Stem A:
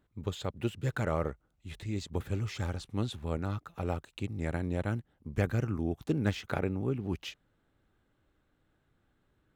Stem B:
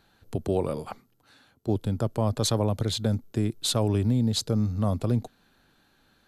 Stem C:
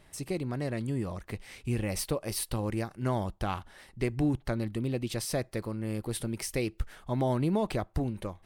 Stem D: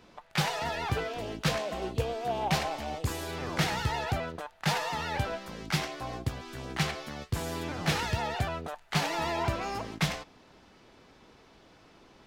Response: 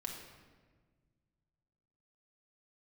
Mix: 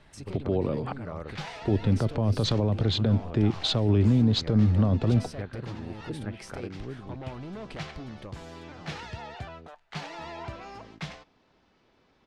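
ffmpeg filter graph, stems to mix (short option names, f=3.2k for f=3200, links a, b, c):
-filter_complex "[0:a]lowpass=2.8k,volume=-7dB,asplit=2[a][b];[1:a]dynaudnorm=f=490:g=3:m=9dB,volume=-1.5dB[c];[2:a]asoftclip=type=tanh:threshold=-30dB,acompressor=threshold=-40dB:ratio=6,volume=1.5dB[d];[3:a]adelay=1000,volume=-8.5dB[e];[b]apad=whole_len=585179[f];[e][f]sidechaincompress=threshold=-46dB:ratio=8:attack=7.3:release=122[g];[a][c]amix=inputs=2:normalize=0,lowpass=3.5k,alimiter=limit=-13.5dB:level=0:latency=1:release=56,volume=0dB[h];[d][g][h]amix=inputs=3:normalize=0,lowpass=5.5k,acrossover=split=460|3000[i][j][k];[j]acompressor=threshold=-34dB:ratio=6[l];[i][l][k]amix=inputs=3:normalize=0"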